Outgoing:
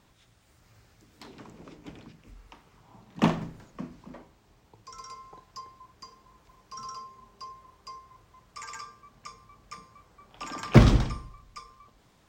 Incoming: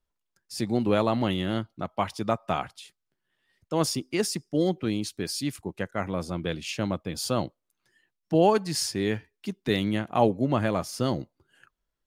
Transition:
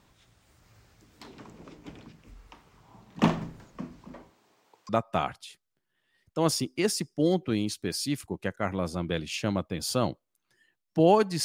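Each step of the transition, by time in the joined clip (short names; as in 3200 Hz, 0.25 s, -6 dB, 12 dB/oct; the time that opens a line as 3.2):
outgoing
4.29–4.89 HPF 180 Hz -> 650 Hz
4.89 switch to incoming from 2.24 s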